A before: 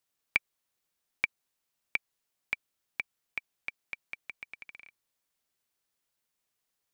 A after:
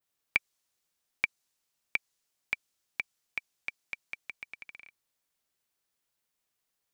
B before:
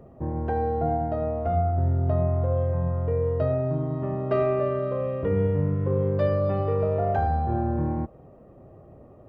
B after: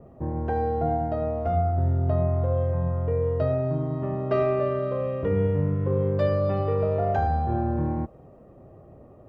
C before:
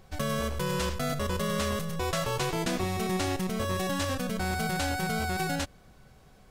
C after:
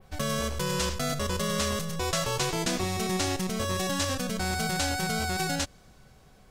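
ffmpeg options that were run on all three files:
-af "adynamicequalizer=threshold=0.00316:dfrequency=6200:dqfactor=0.74:tfrequency=6200:tqfactor=0.74:attack=5:release=100:ratio=0.375:range=3.5:mode=boostabove:tftype=bell"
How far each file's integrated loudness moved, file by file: +0.5 LU, 0.0 LU, +1.5 LU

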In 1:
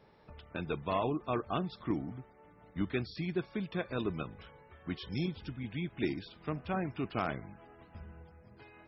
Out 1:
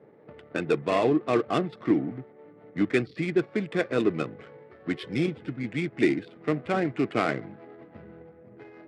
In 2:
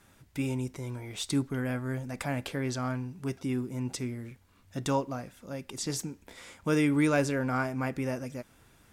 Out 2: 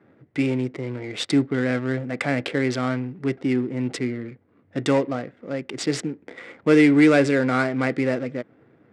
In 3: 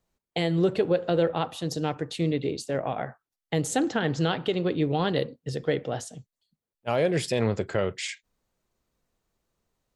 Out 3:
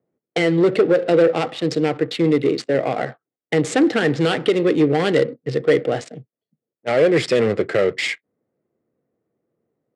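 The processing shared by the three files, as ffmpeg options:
-af "aeval=exprs='0.251*sin(PI/2*1.78*val(0)/0.251)':c=same,adynamicsmooth=sensitivity=7.5:basefreq=730,highpass=f=130:w=0.5412,highpass=f=130:w=1.3066,equalizer=f=180:t=q:w=4:g=-5,equalizer=f=320:t=q:w=4:g=4,equalizer=f=470:t=q:w=4:g=5,equalizer=f=950:t=q:w=4:g=-7,equalizer=f=2000:t=q:w=4:g=7,equalizer=f=6300:t=q:w=4:g=-6,lowpass=f=8600:w=0.5412,lowpass=f=8600:w=1.3066"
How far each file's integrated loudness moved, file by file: +9.5 LU, +9.5 LU, +8.5 LU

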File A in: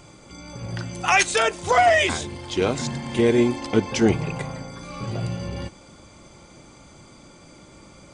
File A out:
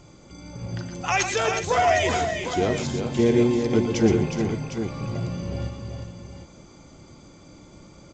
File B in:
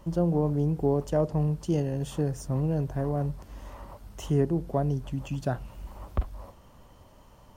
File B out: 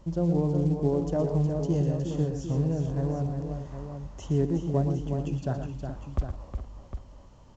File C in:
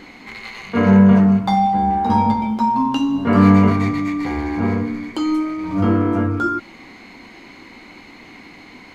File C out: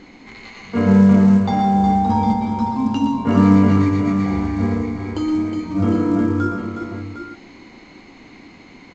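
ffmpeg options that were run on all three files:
-filter_complex "[0:a]equalizer=f=2000:w=0.3:g=-6.5,asplit=2[s0][s1];[s1]aecho=0:1:116|127|364|423|757:0.335|0.251|0.447|0.224|0.335[s2];[s0][s2]amix=inputs=2:normalize=0" -ar 16000 -c:a pcm_alaw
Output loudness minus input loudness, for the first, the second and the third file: -1.5 LU, 0.0 LU, -0.5 LU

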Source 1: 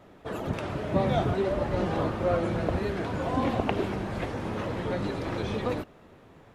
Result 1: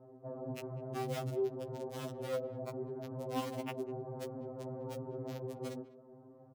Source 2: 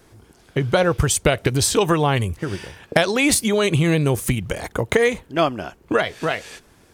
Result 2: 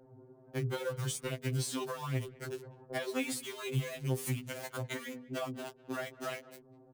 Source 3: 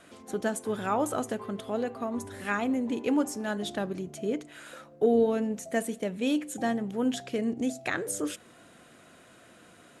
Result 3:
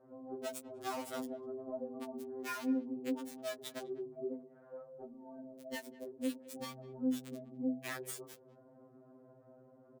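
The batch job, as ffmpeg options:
-filter_complex "[0:a]bandreject=f=50:t=h:w=6,bandreject=f=100:t=h:w=6,bandreject=f=150:t=h:w=6,bandreject=f=200:t=h:w=6,bandreject=f=250:t=h:w=6,bandreject=f=300:t=h:w=6,bandreject=f=350:t=h:w=6,bandreject=f=400:t=h:w=6,bandreject=f=450:t=h:w=6,bandreject=f=500:t=h:w=6,acrossover=split=810[s0][s1];[s1]acrusher=bits=4:mix=0:aa=0.000001[s2];[s0][s2]amix=inputs=2:normalize=0,acrossover=split=370[s3][s4];[s4]acompressor=threshold=0.0562:ratio=2.5[s5];[s3][s5]amix=inputs=2:normalize=0,highpass=f=160:p=1,acompressor=threshold=0.00631:ratio=2,asplit=2[s6][s7];[s7]adelay=200,highpass=300,lowpass=3400,asoftclip=type=hard:threshold=0.0376,volume=0.1[s8];[s6][s8]amix=inputs=2:normalize=0,afftfilt=real='re*2.45*eq(mod(b,6),0)':imag='im*2.45*eq(mod(b,6),0)':win_size=2048:overlap=0.75,volume=1.26"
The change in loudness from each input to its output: -11.5 LU, -18.0 LU, -11.5 LU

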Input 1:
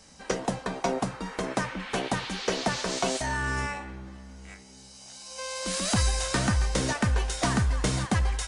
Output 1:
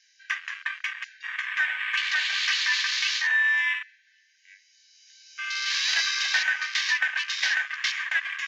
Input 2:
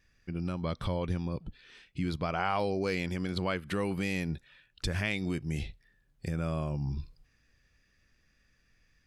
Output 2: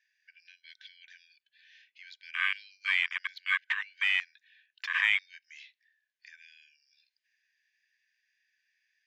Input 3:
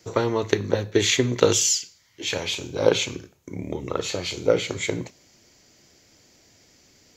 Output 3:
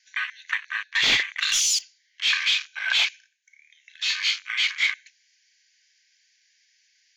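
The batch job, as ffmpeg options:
-filter_complex "[0:a]afftfilt=real='re*between(b*sr/4096,1500,7200)':imag='im*between(b*sr/4096,1500,7200)':win_size=4096:overlap=0.75,asplit=2[s0][s1];[s1]highpass=f=720:p=1,volume=15.8,asoftclip=type=tanh:threshold=0.531[s2];[s0][s2]amix=inputs=2:normalize=0,lowpass=f=2900:p=1,volume=0.501,afwtdn=0.0501,volume=0.75"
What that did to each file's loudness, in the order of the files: +4.0 LU, +4.5 LU, +1.0 LU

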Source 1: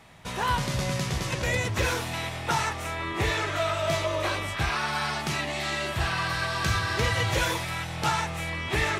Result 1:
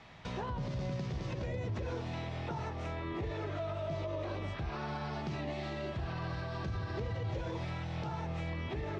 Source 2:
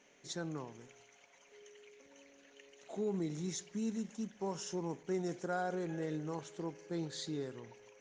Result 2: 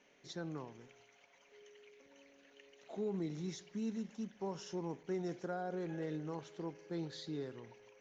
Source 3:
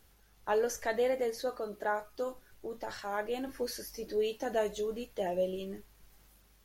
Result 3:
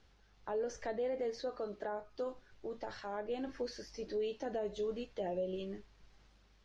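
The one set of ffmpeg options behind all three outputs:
-filter_complex "[0:a]lowpass=f=5600:w=0.5412,lowpass=f=5600:w=1.3066,acrossover=split=700[s0][s1];[s1]acompressor=threshold=0.00631:ratio=6[s2];[s0][s2]amix=inputs=2:normalize=0,alimiter=level_in=1.5:limit=0.0631:level=0:latency=1:release=70,volume=0.668,volume=0.794"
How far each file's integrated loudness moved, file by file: -11.0 LU, -2.5 LU, -5.5 LU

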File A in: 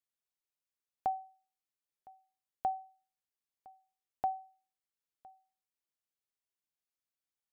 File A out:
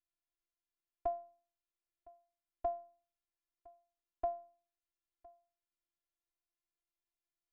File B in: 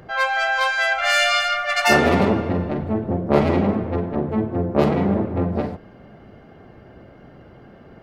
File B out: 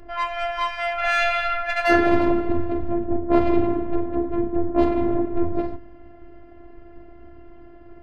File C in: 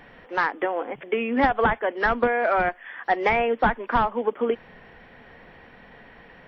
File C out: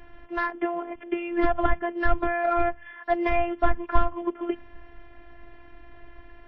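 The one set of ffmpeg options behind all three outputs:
-af "aemphasis=mode=reproduction:type=bsi,bandreject=f=79.67:t=h:w=4,bandreject=f=159.34:t=h:w=4,bandreject=f=239.01:t=h:w=4,bandreject=f=318.68:t=h:w=4,afftfilt=real='hypot(re,im)*cos(PI*b)':imag='0':win_size=512:overlap=0.75"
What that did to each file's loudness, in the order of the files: -3.0 LU, -2.5 LU, -3.5 LU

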